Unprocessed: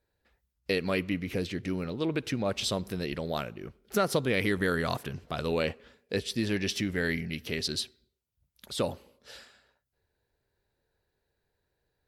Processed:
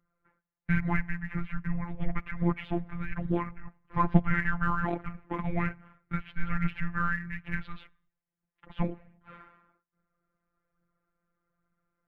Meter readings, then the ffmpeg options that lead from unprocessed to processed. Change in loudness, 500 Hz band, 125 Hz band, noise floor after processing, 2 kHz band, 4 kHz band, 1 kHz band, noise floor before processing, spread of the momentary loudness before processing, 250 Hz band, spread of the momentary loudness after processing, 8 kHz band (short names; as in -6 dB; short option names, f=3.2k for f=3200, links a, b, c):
-1.0 dB, -9.5 dB, +4.0 dB, under -85 dBFS, +0.5 dB, -20.0 dB, +4.0 dB, -81 dBFS, 12 LU, +0.5 dB, 10 LU, under -30 dB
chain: -af "highpass=f=190:t=q:w=0.5412,highpass=f=190:t=q:w=1.307,lowpass=f=2.4k:t=q:w=0.5176,lowpass=f=2.4k:t=q:w=0.7071,lowpass=f=2.4k:t=q:w=1.932,afreqshift=-340,aphaser=in_gain=1:out_gain=1:delay=4.8:decay=0.43:speed=1.2:type=triangular,afftfilt=real='hypot(re,im)*cos(PI*b)':imag='0':win_size=1024:overlap=0.75,volume=5.5dB"